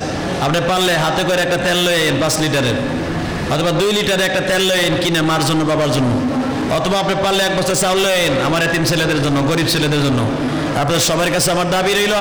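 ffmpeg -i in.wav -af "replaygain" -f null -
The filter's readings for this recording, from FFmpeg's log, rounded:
track_gain = -2.8 dB
track_peak = 0.164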